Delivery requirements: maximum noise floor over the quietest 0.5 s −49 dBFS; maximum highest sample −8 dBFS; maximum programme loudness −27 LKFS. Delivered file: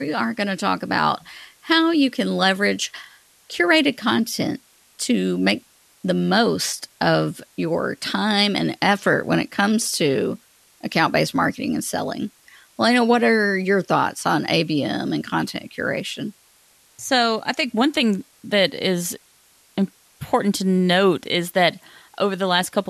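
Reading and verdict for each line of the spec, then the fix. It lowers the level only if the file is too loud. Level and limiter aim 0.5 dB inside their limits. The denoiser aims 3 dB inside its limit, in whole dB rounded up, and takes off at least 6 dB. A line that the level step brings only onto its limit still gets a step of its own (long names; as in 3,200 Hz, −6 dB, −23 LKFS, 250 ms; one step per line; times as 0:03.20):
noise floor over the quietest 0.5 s −56 dBFS: in spec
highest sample −6.0 dBFS: out of spec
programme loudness −20.5 LKFS: out of spec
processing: level −7 dB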